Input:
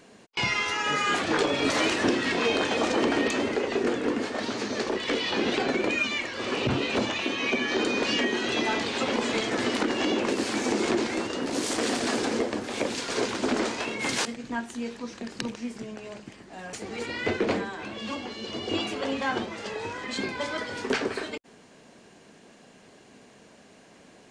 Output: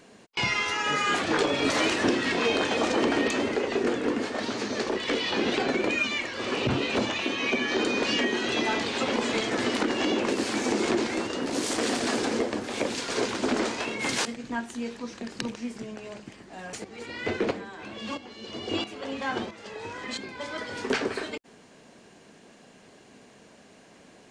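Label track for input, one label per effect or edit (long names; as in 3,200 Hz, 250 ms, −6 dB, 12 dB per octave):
16.840000	20.840000	shaped tremolo saw up 1.5 Hz, depth 70%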